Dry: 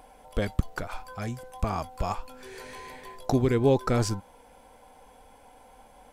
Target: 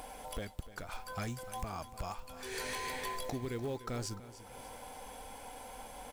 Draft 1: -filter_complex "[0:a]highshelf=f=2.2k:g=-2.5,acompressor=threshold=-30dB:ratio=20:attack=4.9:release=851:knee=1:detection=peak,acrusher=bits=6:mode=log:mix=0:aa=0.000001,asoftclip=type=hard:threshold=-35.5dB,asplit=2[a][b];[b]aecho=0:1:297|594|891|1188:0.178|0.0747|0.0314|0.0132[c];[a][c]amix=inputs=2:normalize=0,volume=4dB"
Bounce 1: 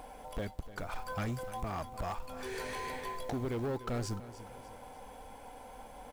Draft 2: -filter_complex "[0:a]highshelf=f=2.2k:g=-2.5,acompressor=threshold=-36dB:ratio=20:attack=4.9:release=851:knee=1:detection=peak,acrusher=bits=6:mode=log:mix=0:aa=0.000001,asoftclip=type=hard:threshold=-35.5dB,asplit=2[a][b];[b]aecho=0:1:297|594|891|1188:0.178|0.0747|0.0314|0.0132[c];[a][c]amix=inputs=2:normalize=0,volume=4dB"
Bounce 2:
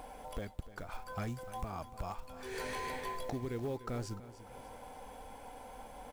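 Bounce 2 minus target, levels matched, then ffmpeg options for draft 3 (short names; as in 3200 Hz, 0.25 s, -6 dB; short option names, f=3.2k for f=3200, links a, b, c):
4000 Hz band -4.5 dB
-filter_complex "[0:a]highshelf=f=2.2k:g=7,acompressor=threshold=-36dB:ratio=20:attack=4.9:release=851:knee=1:detection=peak,acrusher=bits=6:mode=log:mix=0:aa=0.000001,asoftclip=type=hard:threshold=-35.5dB,asplit=2[a][b];[b]aecho=0:1:297|594|891|1188:0.178|0.0747|0.0314|0.0132[c];[a][c]amix=inputs=2:normalize=0,volume=4dB"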